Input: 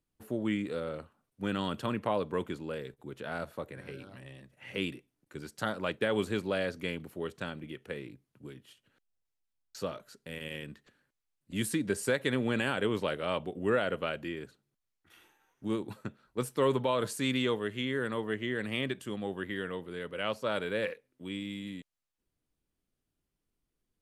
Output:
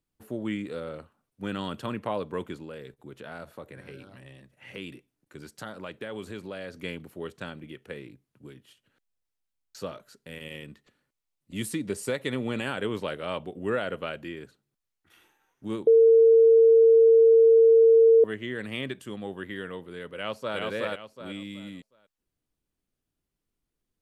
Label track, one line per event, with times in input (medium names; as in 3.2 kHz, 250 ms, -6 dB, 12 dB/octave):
2.640000	6.780000	compression 2:1, threshold -38 dBFS
10.390000	12.660000	band-stop 1.6 kHz, Q 7.5
15.870000	18.240000	bleep 454 Hz -13 dBFS
20.160000	20.580000	echo throw 370 ms, feedback 30%, level -1 dB